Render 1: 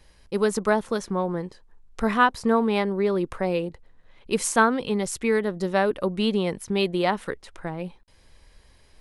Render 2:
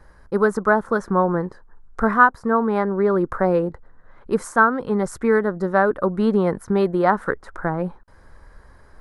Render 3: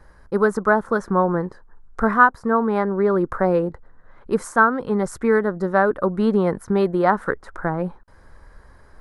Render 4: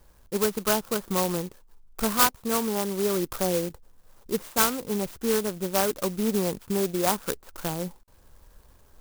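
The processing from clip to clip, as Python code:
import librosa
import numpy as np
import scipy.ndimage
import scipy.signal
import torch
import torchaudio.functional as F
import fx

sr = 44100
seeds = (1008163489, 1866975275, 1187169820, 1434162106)

y1 = fx.high_shelf_res(x, sr, hz=2000.0, db=-11.0, q=3.0)
y1 = fx.rider(y1, sr, range_db=5, speed_s=0.5)
y1 = y1 * librosa.db_to_amplitude(2.5)
y2 = y1
y3 = fx.clock_jitter(y2, sr, seeds[0], jitter_ms=0.13)
y3 = y3 * librosa.db_to_amplitude(-7.0)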